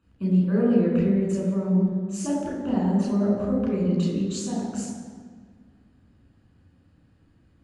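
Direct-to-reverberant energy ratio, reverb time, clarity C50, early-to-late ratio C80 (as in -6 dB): -4.5 dB, 1.7 s, 1.0 dB, 3.0 dB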